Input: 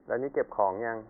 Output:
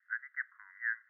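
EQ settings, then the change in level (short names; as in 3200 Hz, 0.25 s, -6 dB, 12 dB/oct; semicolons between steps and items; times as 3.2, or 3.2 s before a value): steep high-pass 1500 Hz 72 dB/oct; air absorption 360 m; +8.5 dB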